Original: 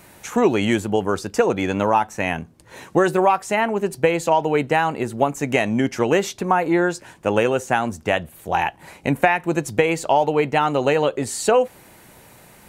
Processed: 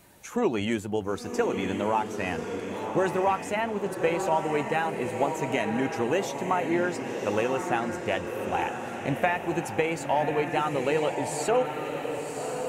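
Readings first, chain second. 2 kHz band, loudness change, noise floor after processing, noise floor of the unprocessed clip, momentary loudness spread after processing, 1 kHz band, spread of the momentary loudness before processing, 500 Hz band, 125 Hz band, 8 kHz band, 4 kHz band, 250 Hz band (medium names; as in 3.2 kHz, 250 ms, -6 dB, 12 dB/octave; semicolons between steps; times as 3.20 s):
-7.5 dB, -7.5 dB, -37 dBFS, -49 dBFS, 6 LU, -7.0 dB, 6 LU, -7.0 dB, -7.5 dB, -7.5 dB, -7.0 dB, -7.0 dB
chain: coarse spectral quantiser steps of 15 dB; echo that smears into a reverb 1085 ms, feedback 46%, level -5.5 dB; trim -8 dB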